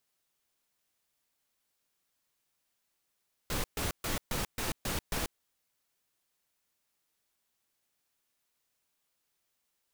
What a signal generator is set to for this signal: noise bursts pink, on 0.14 s, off 0.13 s, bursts 7, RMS -33 dBFS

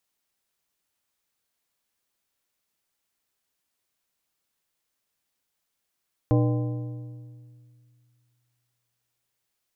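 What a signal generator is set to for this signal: metal hit plate, length 3.17 s, lowest mode 121 Hz, modes 6, decay 2.39 s, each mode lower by 4 dB, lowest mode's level -17.5 dB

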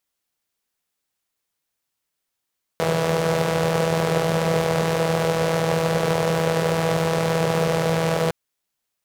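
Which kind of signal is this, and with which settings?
four-cylinder engine model, steady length 5.51 s, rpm 4900, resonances 160/480 Hz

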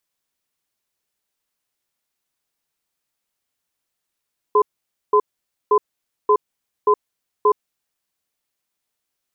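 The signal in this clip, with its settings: cadence 420 Hz, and 1.02 kHz, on 0.07 s, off 0.51 s, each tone -13.5 dBFS 3.17 s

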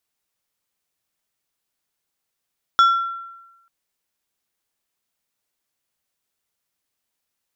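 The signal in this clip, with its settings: glass hit plate, lowest mode 1.36 kHz, decay 1.06 s, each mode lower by 10.5 dB, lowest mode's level -8.5 dB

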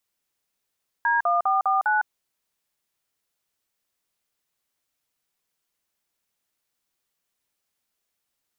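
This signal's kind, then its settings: DTMF "D1449", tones 156 ms, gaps 46 ms, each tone -21 dBFS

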